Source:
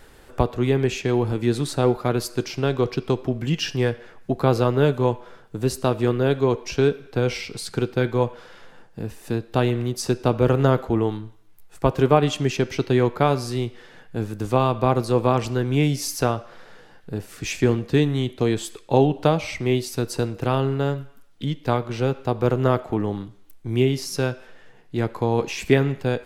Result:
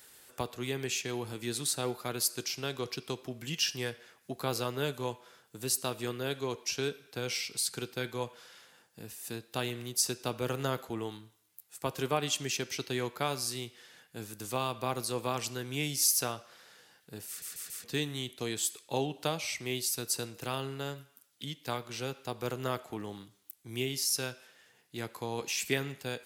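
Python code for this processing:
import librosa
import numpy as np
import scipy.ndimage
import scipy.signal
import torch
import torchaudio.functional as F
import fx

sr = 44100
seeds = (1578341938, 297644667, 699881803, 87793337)

y = fx.edit(x, sr, fx.stutter_over(start_s=17.28, slice_s=0.14, count=4), tone=tone)
y = scipy.signal.sosfilt(scipy.signal.butter(2, 97.0, 'highpass', fs=sr, output='sos'), y)
y = librosa.effects.preemphasis(y, coef=0.9, zi=[0.0])
y = y * 10.0 ** (3.5 / 20.0)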